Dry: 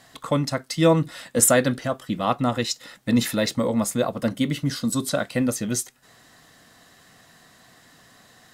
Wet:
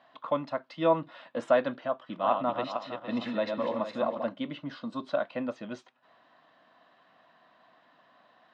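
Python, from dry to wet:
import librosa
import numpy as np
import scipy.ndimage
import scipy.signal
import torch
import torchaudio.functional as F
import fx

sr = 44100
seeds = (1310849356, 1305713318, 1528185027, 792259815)

y = fx.reverse_delay_fb(x, sr, ms=230, feedback_pct=48, wet_db=-4.5, at=(1.85, 4.24))
y = fx.cabinet(y, sr, low_hz=280.0, low_slope=12, high_hz=3200.0, hz=(430.0, 620.0, 1000.0, 2000.0), db=(-7, 7, 7, -6))
y = y * 10.0 ** (-7.5 / 20.0)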